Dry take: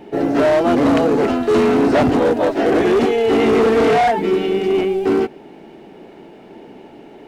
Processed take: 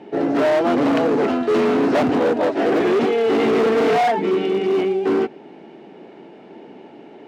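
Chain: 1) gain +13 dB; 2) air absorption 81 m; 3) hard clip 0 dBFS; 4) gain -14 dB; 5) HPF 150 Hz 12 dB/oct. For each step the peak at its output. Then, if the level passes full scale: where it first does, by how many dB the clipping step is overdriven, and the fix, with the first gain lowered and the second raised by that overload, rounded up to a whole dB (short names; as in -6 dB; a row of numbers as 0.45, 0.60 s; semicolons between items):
+7.0, +7.0, 0.0, -14.0, -8.5 dBFS; step 1, 7.0 dB; step 1 +6 dB, step 4 -7 dB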